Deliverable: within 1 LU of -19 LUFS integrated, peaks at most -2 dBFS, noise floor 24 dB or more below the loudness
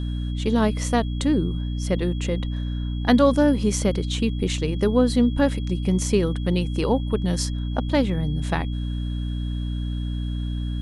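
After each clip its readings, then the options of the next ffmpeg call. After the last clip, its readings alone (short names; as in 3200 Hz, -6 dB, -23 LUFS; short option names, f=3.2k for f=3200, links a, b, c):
hum 60 Hz; harmonics up to 300 Hz; hum level -24 dBFS; steady tone 3300 Hz; tone level -44 dBFS; loudness -23.5 LUFS; peak -4.5 dBFS; loudness target -19.0 LUFS
-> -af "bandreject=f=60:t=h:w=6,bandreject=f=120:t=h:w=6,bandreject=f=180:t=h:w=6,bandreject=f=240:t=h:w=6,bandreject=f=300:t=h:w=6"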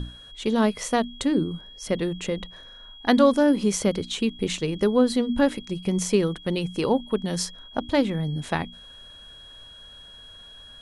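hum none; steady tone 3300 Hz; tone level -44 dBFS
-> -af "bandreject=f=3.3k:w=30"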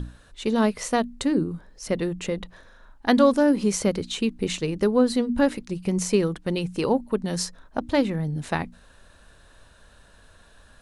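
steady tone none; loudness -24.5 LUFS; peak -5.0 dBFS; loudness target -19.0 LUFS
-> -af "volume=5.5dB,alimiter=limit=-2dB:level=0:latency=1"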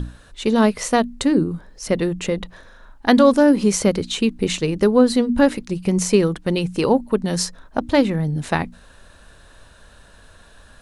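loudness -19.0 LUFS; peak -2.0 dBFS; noise floor -48 dBFS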